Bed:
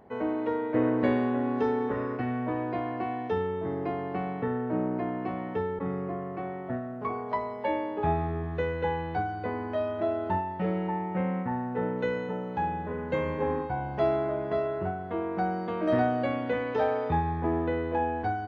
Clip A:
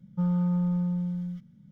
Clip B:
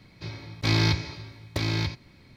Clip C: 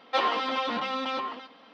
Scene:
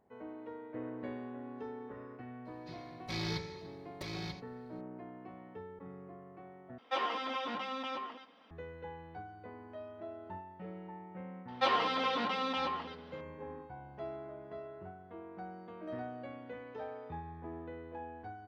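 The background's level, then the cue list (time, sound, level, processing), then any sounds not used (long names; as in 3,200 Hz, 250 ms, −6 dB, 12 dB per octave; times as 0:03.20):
bed −17 dB
0:02.45: mix in B −15.5 dB + comb filter 5.4 ms, depth 89%
0:06.78: overwrite with C −8.5 dB + notch filter 4,200 Hz, Q 6.6
0:11.48: mix in C −4 dB
not used: A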